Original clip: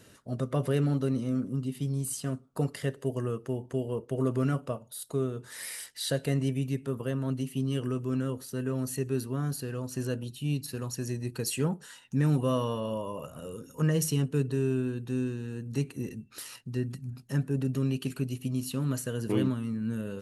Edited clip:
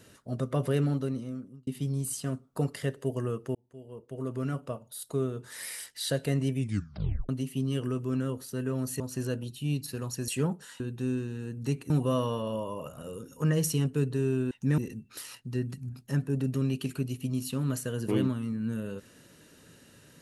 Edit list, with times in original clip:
0.82–1.67 fade out
3.55–5.08 fade in linear
6.58 tape stop 0.71 s
9–9.8 cut
11.08–11.49 cut
12.01–12.28 swap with 14.89–15.99

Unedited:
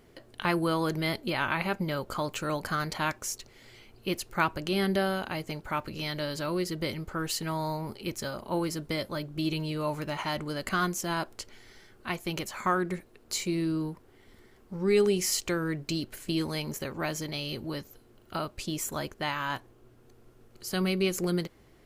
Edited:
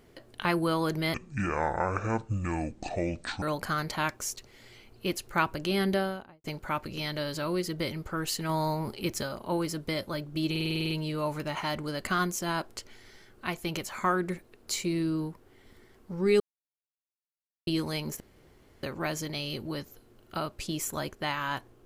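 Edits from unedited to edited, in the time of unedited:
1.14–2.44 speed 57%
4.92–5.46 studio fade out
7.51–8.25 gain +3 dB
9.52 stutter 0.05 s, 9 plays
15.02–16.29 mute
16.82 insert room tone 0.63 s

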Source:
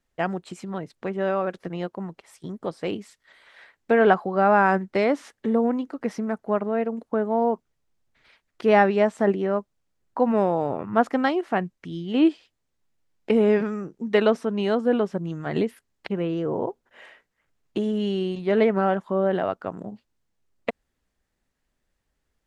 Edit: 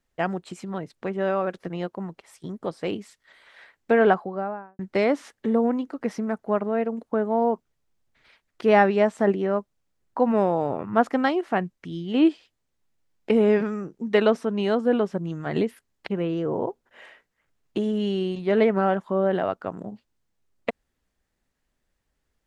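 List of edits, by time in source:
3.91–4.79 studio fade out

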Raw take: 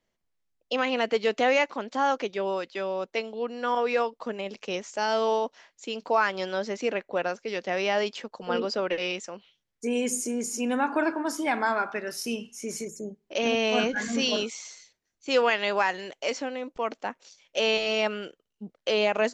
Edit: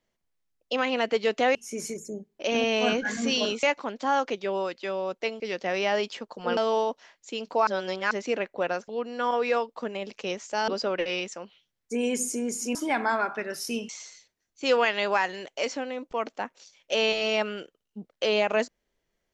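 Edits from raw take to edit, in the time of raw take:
3.32–5.12 swap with 7.43–8.6
6.22–6.66 reverse
10.67–11.32 cut
12.46–14.54 move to 1.55

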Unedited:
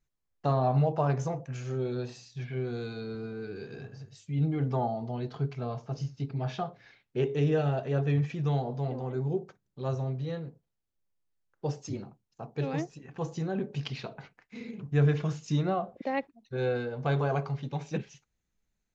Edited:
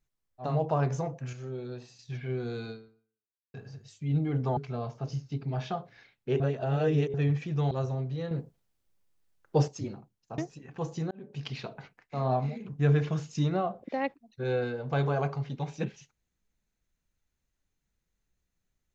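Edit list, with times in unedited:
0.5–0.77 move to 14.58, crossfade 0.24 s
1.6–2.26 gain -6 dB
2.97–3.81 fade out exponential
4.84–5.45 cut
7.28–8.02 reverse
8.59–9.8 cut
10.4–11.77 gain +8 dB
12.47–12.78 cut
13.51–13.95 fade in

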